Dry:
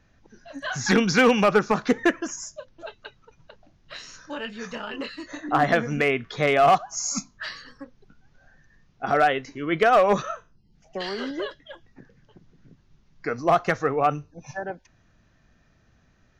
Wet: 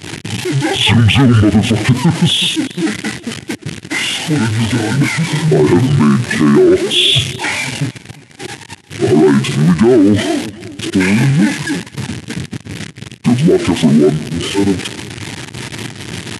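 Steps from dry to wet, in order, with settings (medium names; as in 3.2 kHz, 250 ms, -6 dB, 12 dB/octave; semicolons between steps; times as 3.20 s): jump at every zero crossing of -28.5 dBFS; brick-wall FIR high-pass 180 Hz; high-order bell 1.6 kHz -10.5 dB; gate -39 dBFS, range -20 dB; on a send: feedback delay 359 ms, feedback 31%, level -22.5 dB; on the sum: pitch shift -11.5 st; loudness maximiser +18 dB; warped record 78 rpm, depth 100 cents; trim -1 dB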